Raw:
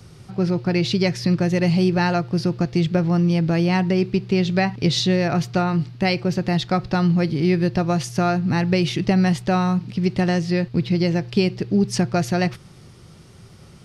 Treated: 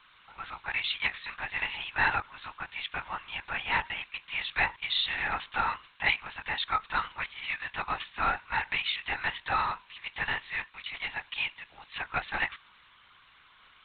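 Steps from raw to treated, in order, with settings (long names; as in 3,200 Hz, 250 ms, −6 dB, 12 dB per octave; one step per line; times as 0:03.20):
Butterworth high-pass 900 Hz 36 dB per octave
linear-prediction vocoder at 8 kHz whisper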